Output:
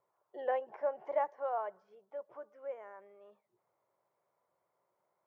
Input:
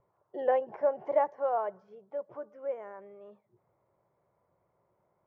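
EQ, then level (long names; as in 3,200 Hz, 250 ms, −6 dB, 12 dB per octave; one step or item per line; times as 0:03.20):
high-pass filter 810 Hz 6 dB per octave
−2.0 dB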